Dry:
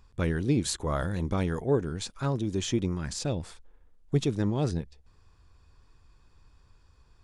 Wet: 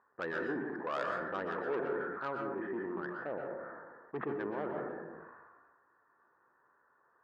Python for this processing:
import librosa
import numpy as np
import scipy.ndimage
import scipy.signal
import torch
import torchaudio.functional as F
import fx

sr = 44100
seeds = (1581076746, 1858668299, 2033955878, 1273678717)

y = scipy.signal.sosfilt(scipy.signal.cheby1(6, 1.0, 1800.0, 'lowpass', fs=sr, output='sos'), x)
y = fx.tilt_eq(y, sr, slope=3.5)
y = 10.0 ** (-29.0 / 20.0) * np.tanh(y / 10.0 ** (-29.0 / 20.0))
y = scipy.signal.sosfilt(scipy.signal.butter(2, 350.0, 'highpass', fs=sr, output='sos'), y)
y = fx.rev_plate(y, sr, seeds[0], rt60_s=0.68, hf_ratio=0.35, predelay_ms=110, drr_db=2.0)
y = fx.sustainer(y, sr, db_per_s=32.0)